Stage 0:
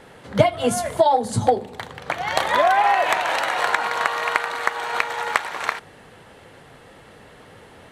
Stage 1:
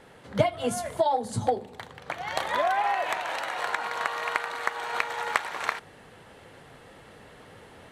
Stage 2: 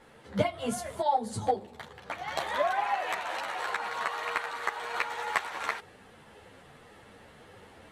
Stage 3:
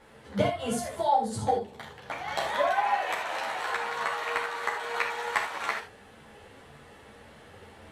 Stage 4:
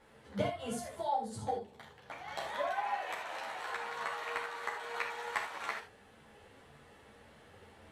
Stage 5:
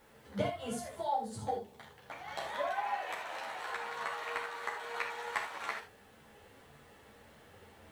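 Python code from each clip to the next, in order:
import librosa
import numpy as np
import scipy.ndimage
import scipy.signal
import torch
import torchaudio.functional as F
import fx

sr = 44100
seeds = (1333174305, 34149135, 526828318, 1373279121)

y1 = fx.rider(x, sr, range_db=5, speed_s=2.0)
y1 = y1 * 10.0 ** (-8.5 / 20.0)
y2 = fx.ensemble(y1, sr)
y3 = fx.rev_gated(y2, sr, seeds[0], gate_ms=100, shape='flat', drr_db=2.0)
y4 = fx.rider(y3, sr, range_db=4, speed_s=2.0)
y4 = y4 * 10.0 ** (-9.0 / 20.0)
y5 = fx.dmg_noise_colour(y4, sr, seeds[1], colour='white', level_db=-73.0)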